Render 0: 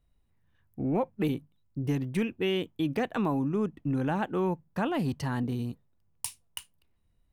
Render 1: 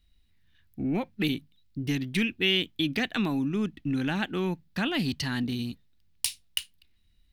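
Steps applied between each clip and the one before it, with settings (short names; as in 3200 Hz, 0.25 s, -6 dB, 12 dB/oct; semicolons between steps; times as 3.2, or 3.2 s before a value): graphic EQ 125/500/1000/2000/4000/8000 Hz -8/-11/-10/+3/+10/-3 dB; gain +6 dB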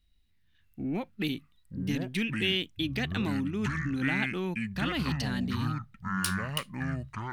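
echoes that change speed 0.609 s, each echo -6 st, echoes 2; gain -4 dB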